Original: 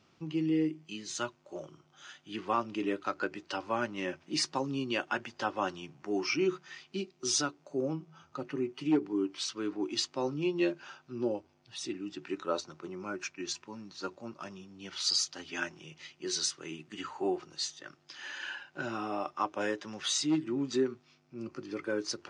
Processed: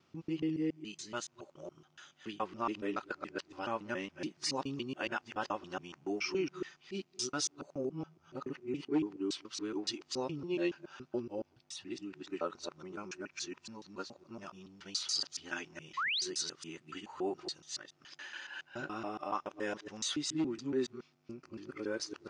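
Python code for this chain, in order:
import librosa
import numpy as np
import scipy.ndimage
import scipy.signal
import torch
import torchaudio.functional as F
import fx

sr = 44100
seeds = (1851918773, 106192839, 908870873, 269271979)

y = fx.local_reverse(x, sr, ms=141.0)
y = fx.spec_paint(y, sr, seeds[0], shape='rise', start_s=15.97, length_s=0.25, low_hz=990.0, high_hz=5200.0, level_db=-29.0)
y = F.gain(torch.from_numpy(y), -4.5).numpy()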